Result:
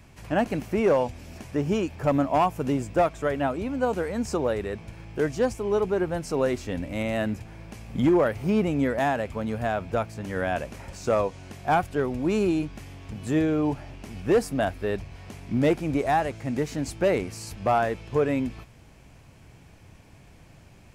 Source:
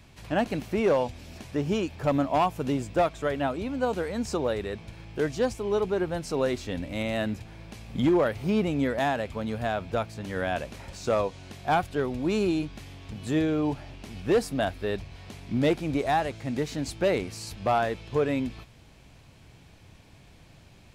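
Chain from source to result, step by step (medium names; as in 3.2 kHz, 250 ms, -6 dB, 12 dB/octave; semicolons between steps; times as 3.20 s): peaking EQ 3.8 kHz -7.5 dB 0.67 oct; trim +2 dB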